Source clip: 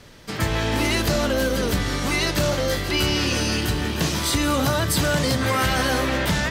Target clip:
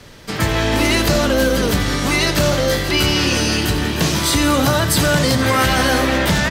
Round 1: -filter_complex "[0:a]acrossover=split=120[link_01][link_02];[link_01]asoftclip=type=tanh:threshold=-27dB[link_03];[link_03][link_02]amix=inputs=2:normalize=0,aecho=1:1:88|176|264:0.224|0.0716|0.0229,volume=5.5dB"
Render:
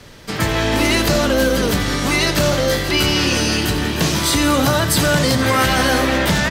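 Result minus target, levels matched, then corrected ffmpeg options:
soft clipping: distortion +8 dB
-filter_complex "[0:a]acrossover=split=120[link_01][link_02];[link_01]asoftclip=type=tanh:threshold=-20dB[link_03];[link_03][link_02]amix=inputs=2:normalize=0,aecho=1:1:88|176|264:0.224|0.0716|0.0229,volume=5.5dB"

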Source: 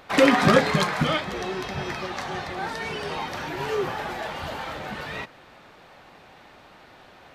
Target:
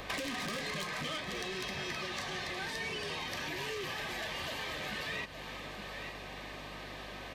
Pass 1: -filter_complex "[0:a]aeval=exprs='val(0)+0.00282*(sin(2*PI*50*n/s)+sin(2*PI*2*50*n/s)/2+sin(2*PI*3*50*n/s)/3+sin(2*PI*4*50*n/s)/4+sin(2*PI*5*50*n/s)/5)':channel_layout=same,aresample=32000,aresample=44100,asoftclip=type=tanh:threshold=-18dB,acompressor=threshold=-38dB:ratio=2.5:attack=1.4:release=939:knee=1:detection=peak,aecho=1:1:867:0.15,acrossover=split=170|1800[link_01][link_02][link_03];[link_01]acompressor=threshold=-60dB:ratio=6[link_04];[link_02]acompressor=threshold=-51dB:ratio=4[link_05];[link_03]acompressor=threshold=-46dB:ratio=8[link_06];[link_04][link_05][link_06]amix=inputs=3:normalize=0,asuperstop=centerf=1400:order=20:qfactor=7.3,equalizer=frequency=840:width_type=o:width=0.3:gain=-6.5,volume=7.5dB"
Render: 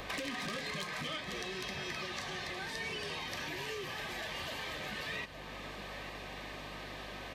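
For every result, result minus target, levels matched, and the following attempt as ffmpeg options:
downward compressor: peak gain reduction +12 dB; soft clipping: distortion −5 dB
-filter_complex "[0:a]aeval=exprs='val(0)+0.00282*(sin(2*PI*50*n/s)+sin(2*PI*2*50*n/s)/2+sin(2*PI*3*50*n/s)/3+sin(2*PI*4*50*n/s)/4+sin(2*PI*5*50*n/s)/5)':channel_layout=same,aresample=32000,aresample=44100,asoftclip=type=tanh:threshold=-18dB,aecho=1:1:867:0.15,acrossover=split=170|1800[link_01][link_02][link_03];[link_01]acompressor=threshold=-60dB:ratio=6[link_04];[link_02]acompressor=threshold=-51dB:ratio=4[link_05];[link_03]acompressor=threshold=-46dB:ratio=8[link_06];[link_04][link_05][link_06]amix=inputs=3:normalize=0,asuperstop=centerf=1400:order=20:qfactor=7.3,equalizer=frequency=840:width_type=o:width=0.3:gain=-6.5,volume=7.5dB"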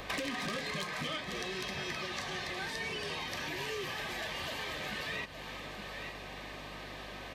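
soft clipping: distortion −5 dB
-filter_complex "[0:a]aeval=exprs='val(0)+0.00282*(sin(2*PI*50*n/s)+sin(2*PI*2*50*n/s)/2+sin(2*PI*3*50*n/s)/3+sin(2*PI*4*50*n/s)/4+sin(2*PI*5*50*n/s)/5)':channel_layout=same,aresample=32000,aresample=44100,asoftclip=type=tanh:threshold=-25dB,aecho=1:1:867:0.15,acrossover=split=170|1800[link_01][link_02][link_03];[link_01]acompressor=threshold=-60dB:ratio=6[link_04];[link_02]acompressor=threshold=-51dB:ratio=4[link_05];[link_03]acompressor=threshold=-46dB:ratio=8[link_06];[link_04][link_05][link_06]amix=inputs=3:normalize=0,asuperstop=centerf=1400:order=20:qfactor=7.3,equalizer=frequency=840:width_type=o:width=0.3:gain=-6.5,volume=7.5dB"

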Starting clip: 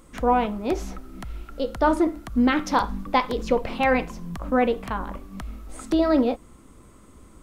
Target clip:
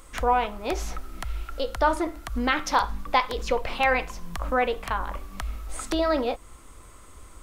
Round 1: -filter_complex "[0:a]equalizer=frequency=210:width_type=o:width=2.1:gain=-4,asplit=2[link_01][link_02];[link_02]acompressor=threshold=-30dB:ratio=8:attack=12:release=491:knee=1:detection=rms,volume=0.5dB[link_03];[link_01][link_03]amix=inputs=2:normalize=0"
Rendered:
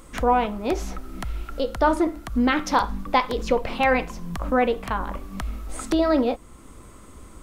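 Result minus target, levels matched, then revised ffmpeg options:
250 Hz band +5.0 dB
-filter_complex "[0:a]equalizer=frequency=210:width_type=o:width=2.1:gain=-15,asplit=2[link_01][link_02];[link_02]acompressor=threshold=-30dB:ratio=8:attack=12:release=491:knee=1:detection=rms,volume=0.5dB[link_03];[link_01][link_03]amix=inputs=2:normalize=0"

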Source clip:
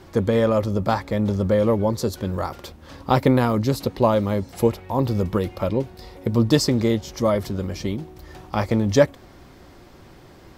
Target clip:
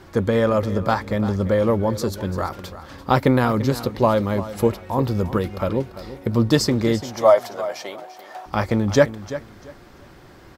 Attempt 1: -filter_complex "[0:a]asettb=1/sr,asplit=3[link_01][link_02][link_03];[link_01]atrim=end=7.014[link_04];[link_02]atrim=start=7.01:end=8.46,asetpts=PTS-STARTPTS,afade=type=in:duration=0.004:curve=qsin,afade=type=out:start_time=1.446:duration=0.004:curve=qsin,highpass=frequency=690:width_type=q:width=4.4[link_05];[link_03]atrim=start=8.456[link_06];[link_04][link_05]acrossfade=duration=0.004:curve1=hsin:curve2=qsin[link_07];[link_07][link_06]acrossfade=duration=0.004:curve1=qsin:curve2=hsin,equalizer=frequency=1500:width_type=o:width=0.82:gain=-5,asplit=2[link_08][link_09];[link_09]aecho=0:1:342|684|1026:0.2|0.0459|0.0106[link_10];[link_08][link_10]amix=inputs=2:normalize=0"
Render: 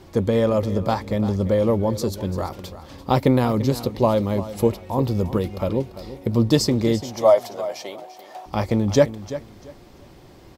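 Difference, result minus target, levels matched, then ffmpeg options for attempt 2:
2,000 Hz band −6.0 dB
-filter_complex "[0:a]asettb=1/sr,asplit=3[link_01][link_02][link_03];[link_01]atrim=end=7.014[link_04];[link_02]atrim=start=7.01:end=8.46,asetpts=PTS-STARTPTS,afade=type=in:duration=0.004:curve=qsin,afade=type=out:start_time=1.446:duration=0.004:curve=qsin,highpass=frequency=690:width_type=q:width=4.4[link_05];[link_03]atrim=start=8.456[link_06];[link_04][link_05]acrossfade=duration=0.004:curve1=hsin:curve2=qsin[link_07];[link_07][link_06]acrossfade=duration=0.004:curve1=qsin:curve2=hsin,equalizer=frequency=1500:width_type=o:width=0.82:gain=4.5,asplit=2[link_08][link_09];[link_09]aecho=0:1:342|684|1026:0.2|0.0459|0.0106[link_10];[link_08][link_10]amix=inputs=2:normalize=0"

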